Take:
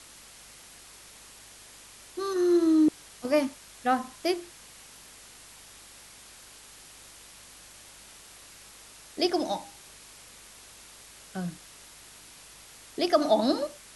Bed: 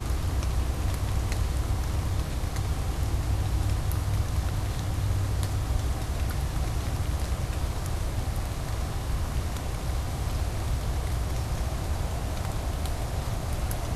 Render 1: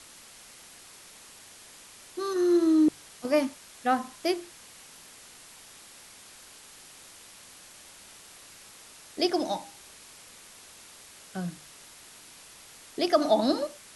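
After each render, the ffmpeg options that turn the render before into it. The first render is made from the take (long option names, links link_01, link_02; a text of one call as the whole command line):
ffmpeg -i in.wav -af "bandreject=frequency=50:width_type=h:width=4,bandreject=frequency=100:width_type=h:width=4,bandreject=frequency=150:width_type=h:width=4" out.wav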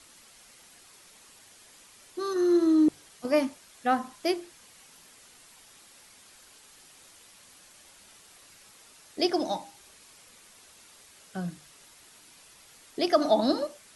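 ffmpeg -i in.wav -af "afftdn=noise_reduction=6:noise_floor=-51" out.wav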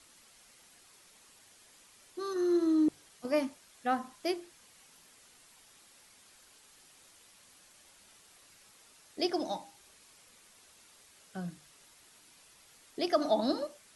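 ffmpeg -i in.wav -af "volume=-5.5dB" out.wav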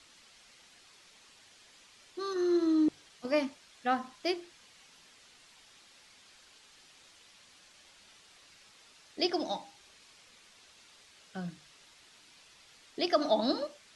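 ffmpeg -i in.wav -af "lowpass=4000,highshelf=frequency=3000:gain=11.5" out.wav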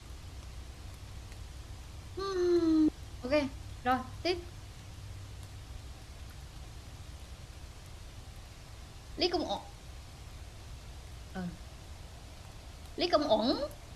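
ffmpeg -i in.wav -i bed.wav -filter_complex "[1:a]volume=-19dB[link_01];[0:a][link_01]amix=inputs=2:normalize=0" out.wav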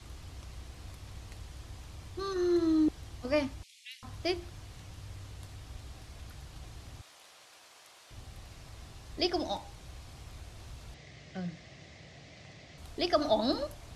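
ffmpeg -i in.wav -filter_complex "[0:a]asettb=1/sr,asplit=3[link_01][link_02][link_03];[link_01]atrim=end=3.634[link_04];[link_02]atrim=start=3.63:end=4.03,asetpts=PTS-STARTPTS,afade=type=in:duration=0.004:curve=qsin,afade=type=out:start_time=0.396:duration=0.004:curve=qsin,asuperpass=centerf=5600:order=20:qfactor=0.56[link_05];[link_03]atrim=start=4.026[link_06];[link_04][link_05]acrossfade=duration=0.004:curve1=hsin:curve2=qsin[link_07];[link_07][link_06]acrossfade=duration=0.004:curve1=qsin:curve2=hsin,asettb=1/sr,asplit=3[link_08][link_09][link_10];[link_08]atrim=end=7.014[link_11];[link_09]atrim=start=7.01:end=8.11,asetpts=PTS-STARTPTS,afade=type=in:duration=0.004:curve=qsin,afade=type=out:start_time=1.096:duration=0.004:curve=qsin,highpass=630[link_12];[link_10]atrim=start=8.106[link_13];[link_11][link_12]acrossfade=duration=0.004:curve1=hsin:curve2=qsin[link_14];[link_14][link_13]acrossfade=duration=0.004:curve1=qsin:curve2=hsin,asettb=1/sr,asplit=3[link_15][link_16][link_17];[link_15]atrim=end=10.944[link_18];[link_16]atrim=start=10.94:end=12.78,asetpts=PTS-STARTPTS,afade=type=in:duration=0.004:curve=qsin,afade=type=out:start_time=1.836:duration=0.004:curve=qsin,highpass=130,equalizer=frequency=150:width_type=q:width=4:gain=7,equalizer=frequency=580:width_type=q:width=4:gain=3,equalizer=frequency=940:width_type=q:width=4:gain=-9,equalizer=frequency=1400:width_type=q:width=4:gain=-7,equalizer=frequency=2000:width_type=q:width=4:gain=10,lowpass=frequency=6600:width=0.5412,lowpass=frequency=6600:width=1.3066[link_19];[link_17]atrim=start=12.776[link_20];[link_18][link_19]acrossfade=duration=0.004:curve1=hsin:curve2=qsin[link_21];[link_21][link_20]acrossfade=duration=0.004:curve1=qsin:curve2=hsin" out.wav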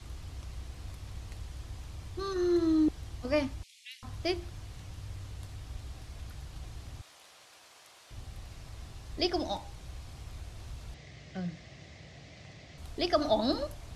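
ffmpeg -i in.wav -af "lowshelf=frequency=110:gain=5.5" out.wav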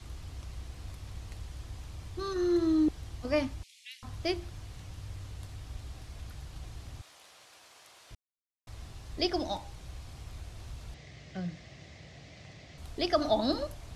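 ffmpeg -i in.wav -filter_complex "[0:a]asplit=3[link_01][link_02][link_03];[link_01]atrim=end=8.15,asetpts=PTS-STARTPTS,afade=type=out:start_time=8.146:duration=0.004:curve=hsin[link_04];[link_02]atrim=start=8.15:end=8.67,asetpts=PTS-STARTPTS,volume=0[link_05];[link_03]atrim=start=8.67,asetpts=PTS-STARTPTS,afade=type=in:duration=0.004:curve=hsin[link_06];[link_04][link_05][link_06]concat=n=3:v=0:a=1" out.wav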